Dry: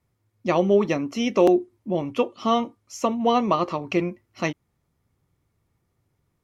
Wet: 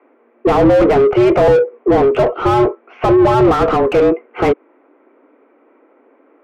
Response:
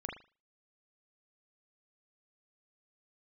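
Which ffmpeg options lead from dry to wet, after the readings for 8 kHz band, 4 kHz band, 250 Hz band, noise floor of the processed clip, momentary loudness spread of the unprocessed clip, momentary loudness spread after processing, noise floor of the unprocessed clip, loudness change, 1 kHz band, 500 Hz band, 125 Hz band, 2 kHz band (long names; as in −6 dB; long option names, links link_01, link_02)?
can't be measured, +3.0 dB, +9.0 dB, −54 dBFS, 10 LU, 7 LU, −74 dBFS, +10.5 dB, +9.5 dB, +12.0 dB, +12.0 dB, +9.5 dB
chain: -filter_complex "[0:a]highpass=frequency=180:width_type=q:width=0.5412,highpass=frequency=180:width_type=q:width=1.307,lowpass=frequency=2500:width_type=q:width=0.5176,lowpass=frequency=2500:width_type=q:width=0.7071,lowpass=frequency=2500:width_type=q:width=1.932,afreqshift=130,asplit=2[link_01][link_02];[link_02]highpass=frequency=720:poles=1,volume=34dB,asoftclip=type=tanh:threshold=-7.5dB[link_03];[link_01][link_03]amix=inputs=2:normalize=0,lowpass=frequency=1000:poles=1,volume=-6dB,lowshelf=frequency=430:gain=10.5"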